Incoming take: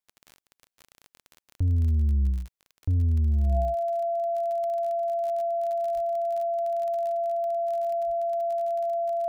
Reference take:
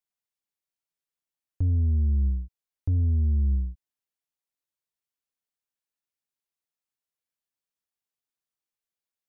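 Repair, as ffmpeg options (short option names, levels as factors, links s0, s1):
-filter_complex "[0:a]adeclick=t=4,bandreject=f=680:w=30,asplit=3[s0][s1][s2];[s0]afade=t=out:st=5.94:d=0.02[s3];[s1]highpass=f=140:w=0.5412,highpass=f=140:w=1.3066,afade=t=in:st=5.94:d=0.02,afade=t=out:st=6.06:d=0.02[s4];[s2]afade=t=in:st=6.06:d=0.02[s5];[s3][s4][s5]amix=inputs=3:normalize=0,asplit=3[s6][s7][s8];[s6]afade=t=out:st=8.06:d=0.02[s9];[s7]highpass=f=140:w=0.5412,highpass=f=140:w=1.3066,afade=t=in:st=8.06:d=0.02,afade=t=out:st=8.18:d=0.02[s10];[s8]afade=t=in:st=8.18:d=0.02[s11];[s9][s10][s11]amix=inputs=3:normalize=0,asetnsamples=n=441:p=0,asendcmd='7.45 volume volume -7.5dB',volume=1"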